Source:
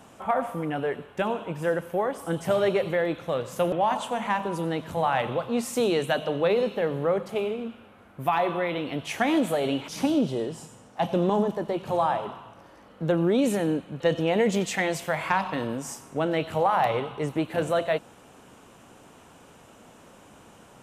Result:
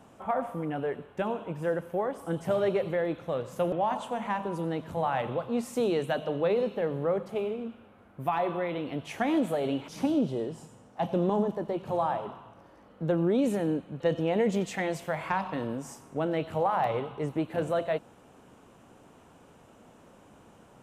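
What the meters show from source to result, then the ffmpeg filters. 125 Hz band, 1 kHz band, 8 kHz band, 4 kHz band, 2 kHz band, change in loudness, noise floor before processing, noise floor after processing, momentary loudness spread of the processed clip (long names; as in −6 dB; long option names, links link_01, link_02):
−2.5 dB, −4.5 dB, −9.5 dB, −8.5 dB, −7.0 dB, −3.5 dB, −52 dBFS, −56 dBFS, 8 LU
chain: -af "tiltshelf=frequency=1400:gain=3.5,volume=-6dB"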